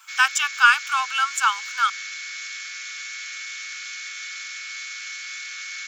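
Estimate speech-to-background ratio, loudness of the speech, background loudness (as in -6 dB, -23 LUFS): 11.5 dB, -20.0 LUFS, -31.5 LUFS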